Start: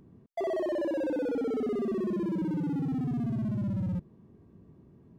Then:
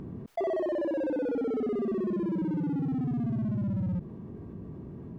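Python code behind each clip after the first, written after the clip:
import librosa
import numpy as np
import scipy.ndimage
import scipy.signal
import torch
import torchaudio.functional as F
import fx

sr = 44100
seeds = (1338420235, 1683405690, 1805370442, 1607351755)

y = fx.rider(x, sr, range_db=4, speed_s=0.5)
y = fx.high_shelf(y, sr, hz=3700.0, db=-11.5)
y = fx.env_flatten(y, sr, amount_pct=50)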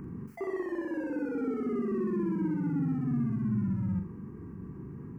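y = fx.low_shelf(x, sr, hz=150.0, db=-7.0)
y = fx.fixed_phaser(y, sr, hz=1500.0, stages=4)
y = fx.room_flutter(y, sr, wall_m=7.2, rt60_s=0.38)
y = F.gain(torch.from_numpy(y), 3.0).numpy()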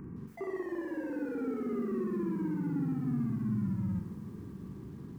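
y = fx.echo_crushed(x, sr, ms=164, feedback_pct=80, bits=9, wet_db=-14.5)
y = F.gain(torch.from_numpy(y), -3.0).numpy()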